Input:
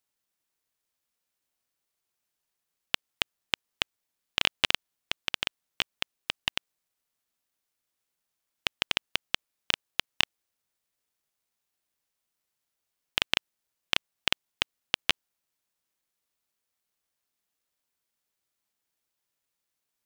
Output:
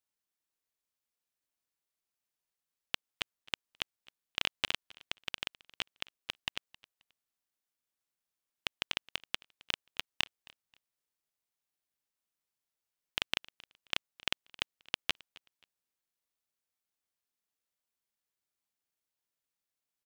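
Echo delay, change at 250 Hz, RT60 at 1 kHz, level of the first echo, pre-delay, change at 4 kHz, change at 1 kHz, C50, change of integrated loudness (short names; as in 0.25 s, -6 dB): 0.266 s, -7.5 dB, none, -23.0 dB, none, -7.5 dB, -7.5 dB, none, -7.5 dB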